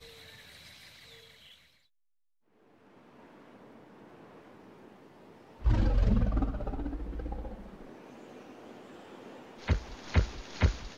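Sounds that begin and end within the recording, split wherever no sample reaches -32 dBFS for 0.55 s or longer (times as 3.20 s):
5.65–7.54 s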